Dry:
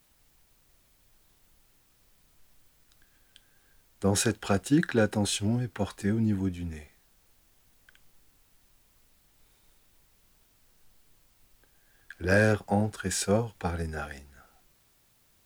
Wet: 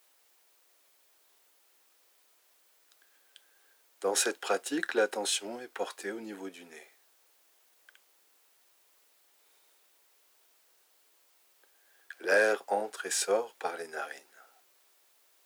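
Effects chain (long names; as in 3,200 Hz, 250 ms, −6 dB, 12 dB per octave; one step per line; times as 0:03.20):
high-pass filter 390 Hz 24 dB per octave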